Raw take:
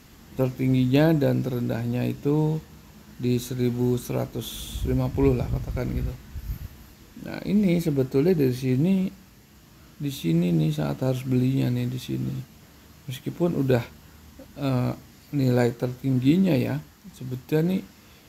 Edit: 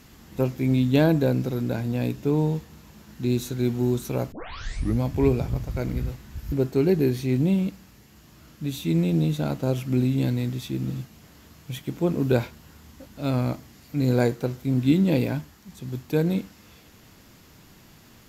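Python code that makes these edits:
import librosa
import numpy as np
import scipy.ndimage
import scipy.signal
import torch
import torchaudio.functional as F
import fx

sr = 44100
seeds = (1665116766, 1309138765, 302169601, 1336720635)

y = fx.edit(x, sr, fx.tape_start(start_s=4.32, length_s=0.7),
    fx.cut(start_s=6.52, length_s=1.39), tone=tone)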